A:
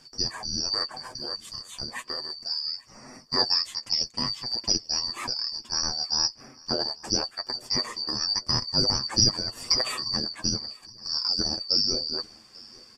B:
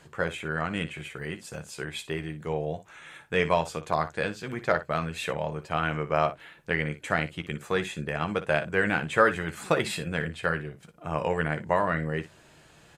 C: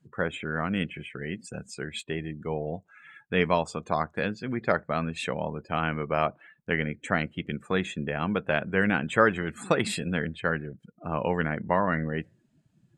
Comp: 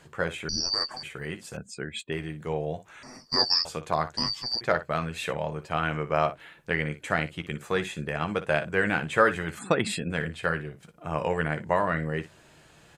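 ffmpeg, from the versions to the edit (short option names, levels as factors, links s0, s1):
-filter_complex "[0:a]asplit=3[s0][s1][s2];[2:a]asplit=2[s3][s4];[1:a]asplit=6[s5][s6][s7][s8][s9][s10];[s5]atrim=end=0.492[s11];[s0]atrim=start=0.488:end=1.032[s12];[s6]atrim=start=1.028:end=1.572[s13];[s3]atrim=start=1.568:end=2.122[s14];[s7]atrim=start=2.118:end=3.032[s15];[s1]atrim=start=3.028:end=3.652[s16];[s8]atrim=start=3.648:end=4.172[s17];[s2]atrim=start=4.168:end=4.612[s18];[s9]atrim=start=4.608:end=9.592[s19];[s4]atrim=start=9.588:end=10.102[s20];[s10]atrim=start=10.098[s21];[s11][s12]acrossfade=d=0.004:c1=hsin:c2=hsin[s22];[s22][s13]acrossfade=d=0.004:c1=hsin:c2=hsin[s23];[s23][s14]acrossfade=d=0.004:c1=hsin:c2=hsin[s24];[s24][s15]acrossfade=d=0.004:c1=hsin:c2=hsin[s25];[s25][s16]acrossfade=d=0.004:c1=hsin:c2=hsin[s26];[s26][s17]acrossfade=d=0.004:c1=hsin:c2=hsin[s27];[s27][s18]acrossfade=d=0.004:c1=hsin:c2=hsin[s28];[s28][s19]acrossfade=d=0.004:c1=hsin:c2=hsin[s29];[s29][s20]acrossfade=d=0.004:c1=hsin:c2=hsin[s30];[s30][s21]acrossfade=d=0.004:c1=hsin:c2=hsin"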